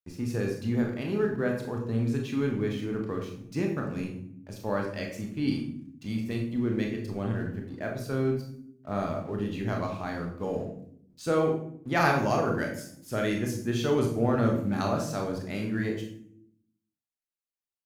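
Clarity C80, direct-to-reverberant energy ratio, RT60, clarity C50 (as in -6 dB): 8.5 dB, 1.0 dB, 0.65 s, 6.0 dB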